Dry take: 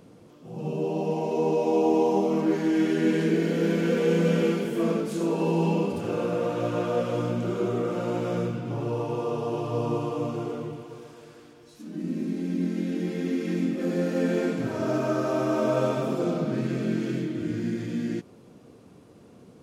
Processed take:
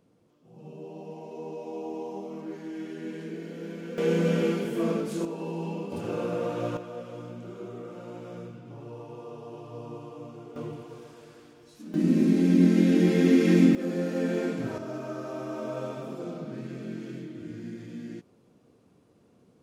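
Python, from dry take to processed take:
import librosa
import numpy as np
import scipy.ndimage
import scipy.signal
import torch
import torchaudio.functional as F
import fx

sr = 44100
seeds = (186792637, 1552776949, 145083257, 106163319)

y = fx.gain(x, sr, db=fx.steps((0.0, -14.0), (3.98, -2.0), (5.25, -9.5), (5.92, -3.0), (6.77, -13.0), (10.56, -2.0), (11.94, 8.0), (13.75, -3.0), (14.78, -10.0)))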